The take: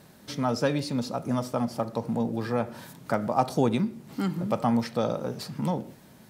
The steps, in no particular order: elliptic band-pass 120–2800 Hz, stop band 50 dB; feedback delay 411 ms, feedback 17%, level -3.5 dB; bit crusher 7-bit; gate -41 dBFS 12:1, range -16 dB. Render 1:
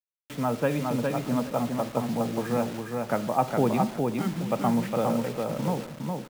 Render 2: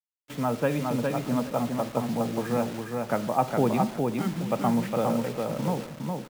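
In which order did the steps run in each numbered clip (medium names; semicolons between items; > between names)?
elliptic band-pass > gate > bit crusher > feedback delay; elliptic band-pass > bit crusher > gate > feedback delay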